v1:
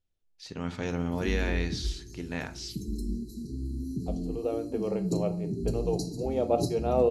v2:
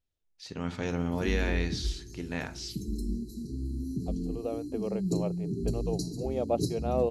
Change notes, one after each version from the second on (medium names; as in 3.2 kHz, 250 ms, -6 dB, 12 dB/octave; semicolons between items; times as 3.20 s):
second voice: send off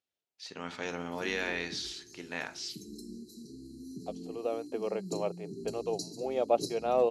second voice +4.5 dB; master: add frequency weighting A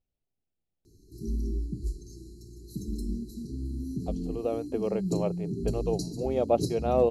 first voice: muted; master: remove frequency weighting A